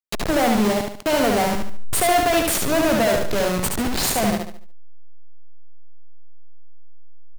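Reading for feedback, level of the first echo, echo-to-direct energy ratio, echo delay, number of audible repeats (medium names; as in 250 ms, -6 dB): 37%, -3.5 dB, -3.0 dB, 72 ms, 4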